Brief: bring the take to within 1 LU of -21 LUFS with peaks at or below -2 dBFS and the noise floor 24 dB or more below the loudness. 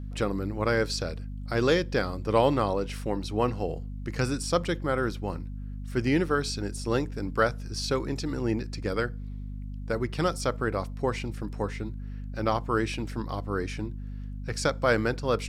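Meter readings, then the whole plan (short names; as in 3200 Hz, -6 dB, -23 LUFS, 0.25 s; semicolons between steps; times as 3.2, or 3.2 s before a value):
hum 50 Hz; harmonics up to 250 Hz; hum level -34 dBFS; loudness -29.0 LUFS; peak -8.5 dBFS; loudness target -21.0 LUFS
-> notches 50/100/150/200/250 Hz; gain +8 dB; limiter -2 dBFS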